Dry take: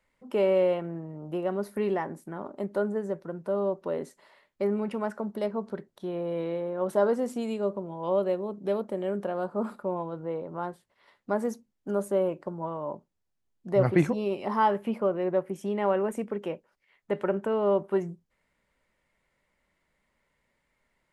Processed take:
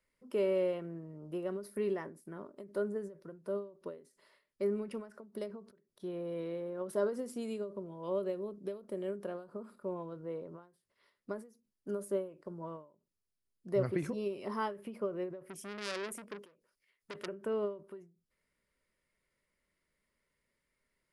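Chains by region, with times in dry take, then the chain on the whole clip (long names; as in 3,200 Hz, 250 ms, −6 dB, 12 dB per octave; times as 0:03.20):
0:15.43–0:17.28: high-shelf EQ 4,000 Hz +6.5 dB + saturating transformer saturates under 3,100 Hz
whole clip: thirty-one-band graphic EQ 400 Hz +4 dB, 800 Hz −11 dB, 5,000 Hz +7 dB, 10,000 Hz +11 dB; every ending faded ahead of time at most 140 dB per second; level −8 dB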